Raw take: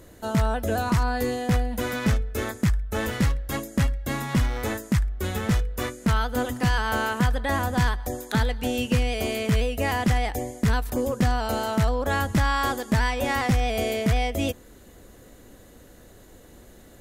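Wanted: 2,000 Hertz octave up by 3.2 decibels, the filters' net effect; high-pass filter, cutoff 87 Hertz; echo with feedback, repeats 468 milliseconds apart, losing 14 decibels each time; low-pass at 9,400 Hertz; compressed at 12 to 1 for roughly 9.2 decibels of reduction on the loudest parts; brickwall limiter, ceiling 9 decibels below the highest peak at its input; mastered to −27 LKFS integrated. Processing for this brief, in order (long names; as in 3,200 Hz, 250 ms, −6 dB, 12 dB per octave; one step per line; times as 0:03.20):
high-pass filter 87 Hz
low-pass filter 9,400 Hz
parametric band 2,000 Hz +4 dB
downward compressor 12 to 1, threshold −27 dBFS
brickwall limiter −23.5 dBFS
repeating echo 468 ms, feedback 20%, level −14 dB
level +7 dB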